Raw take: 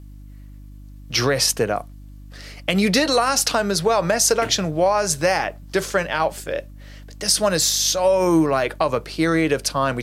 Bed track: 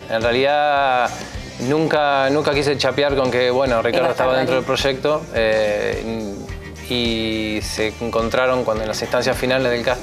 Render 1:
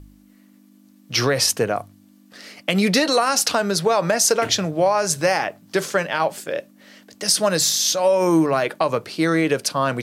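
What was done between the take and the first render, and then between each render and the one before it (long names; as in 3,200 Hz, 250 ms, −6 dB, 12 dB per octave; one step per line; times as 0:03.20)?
hum removal 50 Hz, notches 3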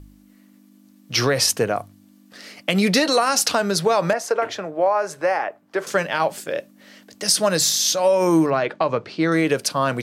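0:04.13–0:05.87: three-way crossover with the lows and the highs turned down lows −17 dB, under 330 Hz, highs −16 dB, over 2,100 Hz
0:08.50–0:09.32: high-frequency loss of the air 140 metres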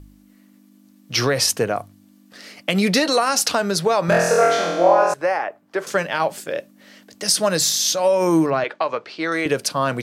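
0:04.06–0:05.14: flutter between parallel walls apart 4 metres, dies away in 1.1 s
0:08.64–0:09.46: meter weighting curve A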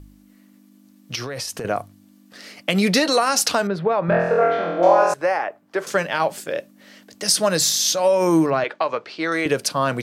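0:01.15–0:01.65: downward compressor 12 to 1, threshold −25 dBFS
0:03.67–0:04.83: high-frequency loss of the air 500 metres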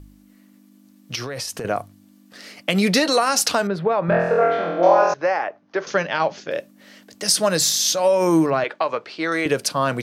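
0:04.69–0:06.51: Butterworth low-pass 6,500 Hz 96 dB per octave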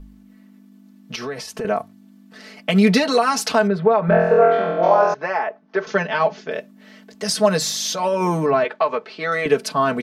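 high-shelf EQ 4,400 Hz −11.5 dB
comb filter 4.6 ms, depth 88%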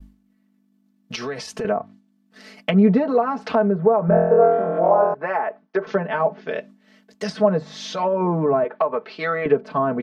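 downward expander −37 dBFS
treble cut that deepens with the level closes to 900 Hz, closed at −16 dBFS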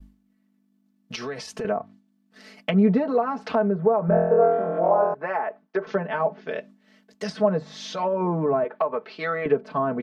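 level −3.5 dB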